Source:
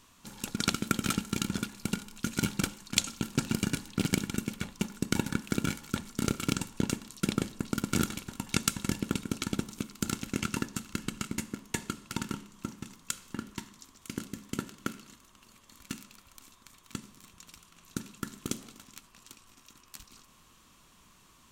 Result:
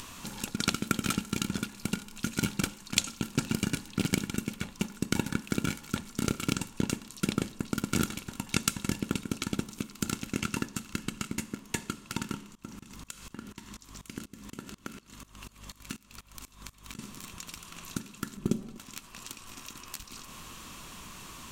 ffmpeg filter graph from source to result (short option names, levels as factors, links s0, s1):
-filter_complex "[0:a]asettb=1/sr,asplit=3[s0][s1][s2];[s0]atrim=end=12.554[s3];[s1]atrim=start=12.55:end=16.99,asetpts=PTS-STARTPTS,afade=t=in:d=0.004:c=qsin,afade=t=out:st=4.436:d=0.004:c=qsin,aeval=exprs='val(0)+0.00126*(sin(2*PI*50*n/s)+sin(2*PI*2*50*n/s)/2+sin(2*PI*3*50*n/s)/3+sin(2*PI*4*50*n/s)/4+sin(2*PI*5*50*n/s)/5)':c=same,aeval=exprs='val(0)*pow(10,-23*if(lt(mod(-4.1*n/s,1),2*abs(-4.1)/1000),1-mod(-4.1*n/s,1)/(2*abs(-4.1)/1000),(mod(-4.1*n/s,1)-2*abs(-4.1)/1000)/(1-2*abs(-4.1)/1000))/20)':c=same[s4];[s2]atrim=start=16.986[s5];[s3][s4]acrossfade=d=0.004:c1=hsin:c2=qsin[s6];[s6][s5]acrossfade=d=0.004:c1=qsin:c2=hsin,asettb=1/sr,asplit=3[s7][s8][s9];[s7]atrim=end=18.374[s10];[s8]atrim=start=18.37:end=18.78,asetpts=PTS-STARTPTS,afade=t=in:d=0.004:c=qsin,afade=t=out:st=0.406:d=0.004:c=qsin,tiltshelf=f=780:g=9,aecho=1:1:5.2:0.49,atrim=end_sample=18081[s11];[s9]atrim=start=18.776[s12];[s10][s11]acrossfade=d=0.004:c1=hsin:c2=qsin[s13];[s13][s12]acrossfade=d=0.004:c1=qsin:c2=hsin,equalizer=f=2600:t=o:w=0.21:g=2.5,acompressor=mode=upward:threshold=0.0251:ratio=2.5"